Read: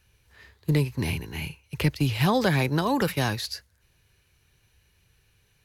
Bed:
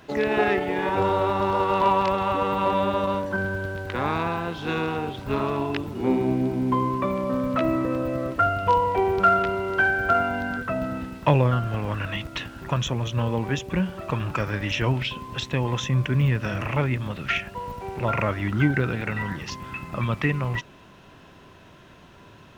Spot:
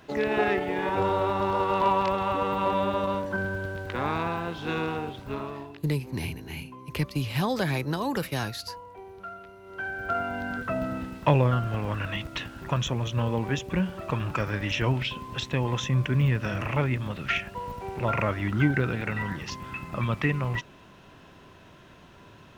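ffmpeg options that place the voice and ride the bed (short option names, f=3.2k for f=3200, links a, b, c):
-filter_complex "[0:a]adelay=5150,volume=-4.5dB[a];[1:a]volume=17.5dB,afade=t=out:st=4.9:d=0.92:silence=0.105925,afade=t=in:st=9.61:d=1.13:silence=0.0944061[b];[a][b]amix=inputs=2:normalize=0"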